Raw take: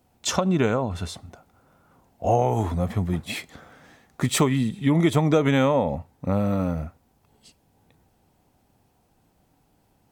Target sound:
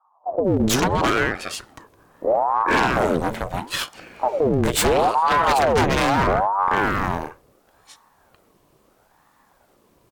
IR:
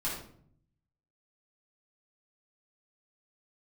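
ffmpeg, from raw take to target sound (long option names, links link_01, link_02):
-filter_complex "[0:a]aeval=exprs='0.398*(cos(1*acos(clip(val(0)/0.398,-1,1)))-cos(1*PI/2))+0.0708*(cos(5*acos(clip(val(0)/0.398,-1,1)))-cos(5*PI/2))+0.158*(cos(6*acos(clip(val(0)/0.398,-1,1)))-cos(6*PI/2))':channel_layout=same,bandreject=frequency=50:width_type=h:width=6,bandreject=frequency=100:width_type=h:width=6,bandreject=frequency=150:width_type=h:width=6,bandreject=frequency=200:width_type=h:width=6,bandreject=frequency=250:width_type=h:width=6,bandreject=frequency=300:width_type=h:width=6,bandreject=frequency=350:width_type=h:width=6,acrossover=split=280[link_01][link_02];[link_02]adelay=440[link_03];[link_01][link_03]amix=inputs=2:normalize=0,asoftclip=type=hard:threshold=-15dB,aeval=exprs='val(0)*sin(2*PI*620*n/s+620*0.65/0.75*sin(2*PI*0.75*n/s))':channel_layout=same,volume=3.5dB"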